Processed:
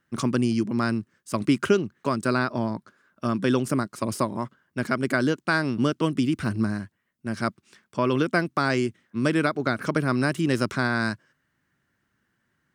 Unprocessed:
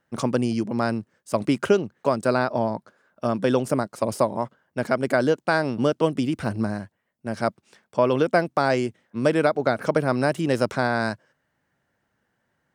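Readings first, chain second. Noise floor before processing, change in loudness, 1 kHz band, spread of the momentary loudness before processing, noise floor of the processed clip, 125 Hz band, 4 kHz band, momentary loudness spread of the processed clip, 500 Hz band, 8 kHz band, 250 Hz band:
-75 dBFS, -1.5 dB, -3.0 dB, 9 LU, -75 dBFS, +1.0 dB, +1.0 dB, 9 LU, -5.5 dB, +1.0 dB, +1.0 dB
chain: high-order bell 640 Hz -9 dB 1.2 oct; trim +1 dB

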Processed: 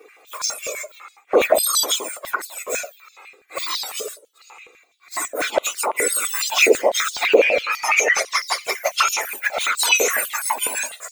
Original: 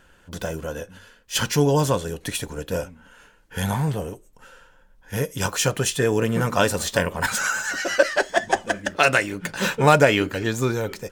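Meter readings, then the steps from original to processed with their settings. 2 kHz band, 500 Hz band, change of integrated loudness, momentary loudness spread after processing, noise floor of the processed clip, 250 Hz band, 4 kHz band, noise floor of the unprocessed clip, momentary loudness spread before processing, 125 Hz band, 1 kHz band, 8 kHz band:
+3.0 dB, +1.5 dB, +3.0 dB, 13 LU, -55 dBFS, -9.0 dB, +5.5 dB, -56 dBFS, 13 LU, under -30 dB, +0.5 dB, +7.5 dB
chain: spectrum inverted on a logarithmic axis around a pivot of 1.9 kHz; touch-sensitive flanger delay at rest 2.6 ms, full sweep at -18 dBFS; loudness maximiser +19 dB; step-sequenced high-pass 12 Hz 450–4700 Hz; trim -10 dB

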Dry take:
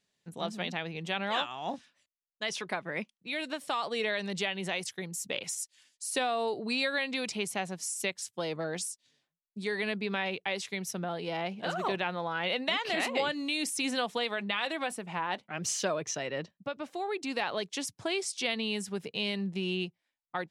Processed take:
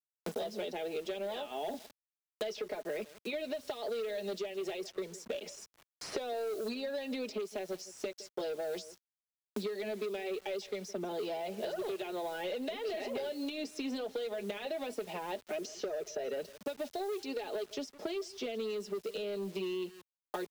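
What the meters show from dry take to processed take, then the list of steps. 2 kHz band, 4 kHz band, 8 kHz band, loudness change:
-13.0 dB, -10.5 dB, -13.0 dB, -5.5 dB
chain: flange 0.18 Hz, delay 0.7 ms, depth 6.1 ms, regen -48%; high-pass 320 Hz 24 dB/octave; in parallel at -5 dB: saturation -30 dBFS, distortion -15 dB; on the sum: comb 4.8 ms, depth 60%; compression 10:1, threshold -35 dBFS, peak gain reduction 10.5 dB; FFT filter 570 Hz 0 dB, 1.1 kHz -20 dB, 5.2 kHz -6 dB, 9.7 kHz -24 dB; on a send: delay 160 ms -22 dB; on the sum: waveshaping leveller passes 2; peaking EQ 5.9 kHz -3.5 dB 2.7 oct; word length cut 10-bit, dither none; three bands compressed up and down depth 100%

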